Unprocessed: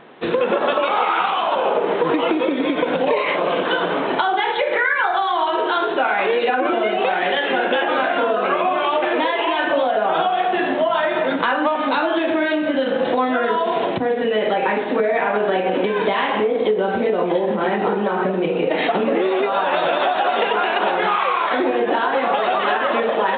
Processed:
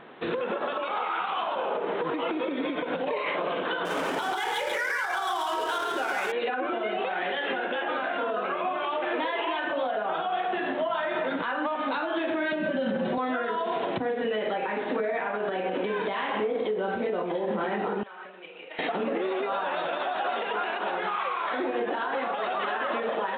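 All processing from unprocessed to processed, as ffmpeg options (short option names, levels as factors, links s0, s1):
-filter_complex "[0:a]asettb=1/sr,asplit=3[s0][s1][s2];[s0]atrim=end=3.854[s3];[s1]atrim=start=3.85:end=6.32,asetpts=PTS-STARTPTS,afade=t=in:d=0.004:c=qsin,afade=t=out:st=2.466:d=0.004:c=qsin,highshelf=f=3500:g=9.5,adynamicsmooth=sensitivity=7:basefreq=560,aecho=1:1:140:0.668,atrim=end_sample=108927[s4];[s2]atrim=start=6.316[s5];[s3][s4]acrossfade=d=0.004:c1=hsin:c2=qsin[s6];[s6][s5]acrossfade=d=0.004:c1=qsin:c2=hsin,asettb=1/sr,asplit=3[s7][s8][s9];[s7]atrim=end=12.524[s10];[s8]atrim=start=12.52:end=13.18,asetpts=PTS-STARTPTS,afade=t=in:d=0.004:c=qsin,afade=t=out:st=0.656:d=0.004:c=qsin,equalizer=f=160:w=0.58:g=12,aecho=1:1:5.2:0.82,atrim=end_sample=29106[s11];[s9]atrim=start=13.176[s12];[s10][s11]acrossfade=d=0.004:c1=hsin:c2=qsin[s13];[s13][s12]acrossfade=d=0.004:c1=qsin:c2=hsin,asettb=1/sr,asplit=3[s14][s15][s16];[s14]atrim=end=18.034[s17];[s15]atrim=start=18.03:end=18.79,asetpts=PTS-STARTPTS,afade=t=in:d=0.004:c=qsin,afade=t=out:st=0.756:d=0.004:c=qsin,lowpass=f=3300:w=0.5412,lowpass=f=3300:w=1.3066,aderivative[s18];[s16]atrim=start=18.786[s19];[s17][s18]acrossfade=d=0.004:c1=hsin:c2=qsin[s20];[s20][s19]acrossfade=d=0.004:c1=qsin:c2=hsin,equalizer=f=1400:t=o:w=0.77:g=2.5,alimiter=limit=0.158:level=0:latency=1:release=237,volume=0.631"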